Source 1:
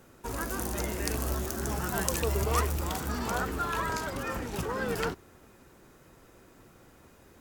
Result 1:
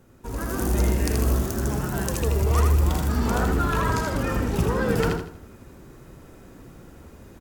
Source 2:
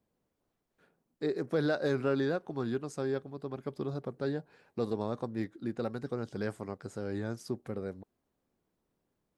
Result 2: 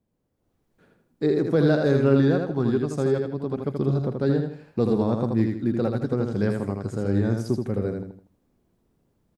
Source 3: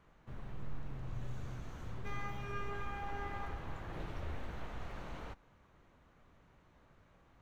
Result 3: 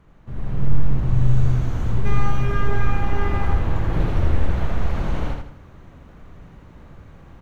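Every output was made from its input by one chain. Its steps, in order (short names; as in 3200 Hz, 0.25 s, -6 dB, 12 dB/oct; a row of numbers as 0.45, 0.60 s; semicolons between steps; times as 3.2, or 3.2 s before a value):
low shelf 370 Hz +10 dB; on a send: feedback echo 80 ms, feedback 35%, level -4.5 dB; on the sum: AGC gain up to 8 dB; match loudness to -24 LUFS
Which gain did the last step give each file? -5.0, -3.5, +5.0 dB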